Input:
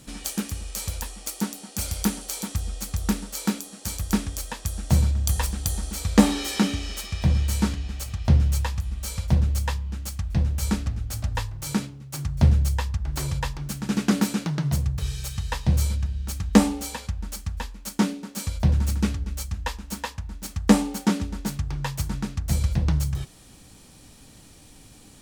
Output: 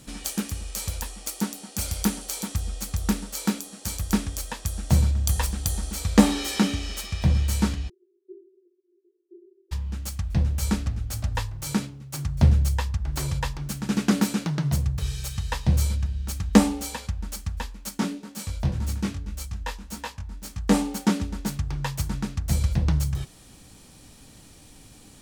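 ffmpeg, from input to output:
-filter_complex "[0:a]asplit=3[a][b][c];[a]afade=t=out:st=7.88:d=0.02[d];[b]asuperpass=centerf=370:order=8:qfactor=6.4,afade=t=in:st=7.88:d=0.02,afade=t=out:st=9.71:d=0.02[e];[c]afade=t=in:st=9.71:d=0.02[f];[d][e][f]amix=inputs=3:normalize=0,asplit=3[g][h][i];[g]afade=t=out:st=17.9:d=0.02[j];[h]flanger=delay=18:depth=4.1:speed=1.8,afade=t=in:st=17.9:d=0.02,afade=t=out:st=20.73:d=0.02[k];[i]afade=t=in:st=20.73:d=0.02[l];[j][k][l]amix=inputs=3:normalize=0"

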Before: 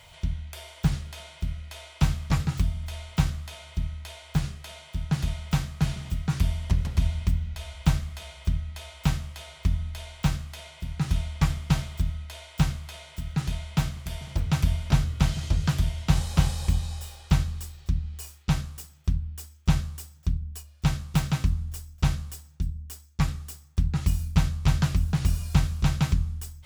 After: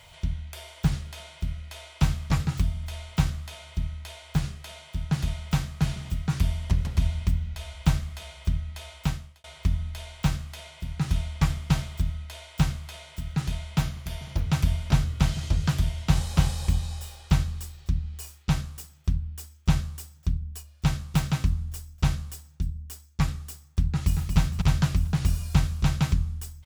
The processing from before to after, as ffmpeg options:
-filter_complex "[0:a]asettb=1/sr,asplit=3[a][b][c];[a]atrim=end=13.824[d];[b]atrim=start=13.82:end=14.47,asetpts=PTS-STARTPTS,afade=t=in:d=0.004:c=qsin,afade=t=out:st=0.646:d=0.004:c=qsin,bandreject=f=8k:w=6.6[e];[c]atrim=start=14.466[f];[d][e]acrossfade=d=0.004:c1=hsin:c2=qsin[g];[g][f]acrossfade=d=0.004:c1=qsin:c2=hsin,asplit=2[h][i];[i]afade=t=in:st=23.92:d=0.01,afade=t=out:st=24.38:d=0.01,aecho=0:1:230|460|690|920:0.530884|0.18581|0.0650333|0.0227617[j];[h][j]amix=inputs=2:normalize=0,asplit=2[k][l];[k]atrim=end=9.44,asetpts=PTS-STARTPTS,afade=t=out:st=8.94:d=0.5[m];[l]atrim=start=9.44,asetpts=PTS-STARTPTS,afade=t=in:d=0.004:c=hsin[n];[m][n]concat=n=2:v=0:a=1"

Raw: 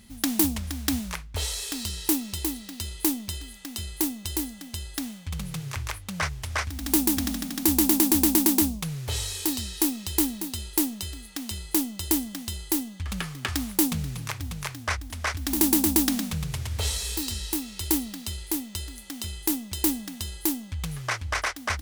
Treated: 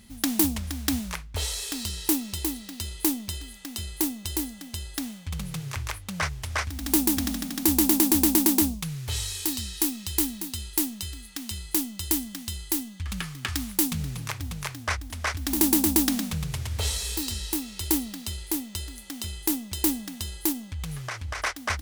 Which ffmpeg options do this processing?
-filter_complex "[0:a]asettb=1/sr,asplit=3[a][b][c];[a]atrim=end=8.744[d];[b]atrim=start=8.74:end=14,asetpts=PTS-STARTPTS,afade=t=in:d=0.004:c=qsin,afade=t=out:st=5.256:d=0.004:c=qsin,equalizer=f=530:t=o:w=1.7:g=-7[e];[c]atrim=start=13.996[f];[d][e]acrossfade=d=0.004:c1=hsin:c2=qsin[g];[g][f]acrossfade=d=0.004:c1=qsin:c2=hsin,asettb=1/sr,asplit=3[h][i][j];[h]atrim=end=20.524[k];[i]atrim=start=20.52:end=21.4,asetpts=PTS-STARTPTS,afade=t=in:d=0.004:c=qsin,afade=t=out:st=0.876:d=0.004:c=qsin,acompressor=threshold=-29dB:ratio=6:attack=3.2:release=140:knee=1:detection=peak[l];[j]atrim=start=21.396[m];[k][l]acrossfade=d=0.004:c1=hsin:c2=qsin[n];[n][m]acrossfade=d=0.004:c1=qsin:c2=hsin"

